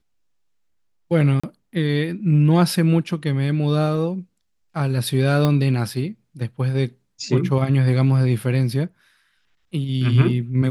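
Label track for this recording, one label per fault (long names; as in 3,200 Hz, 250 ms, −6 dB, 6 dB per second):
1.400000	1.440000	drop-out 35 ms
5.450000	5.450000	click −8 dBFS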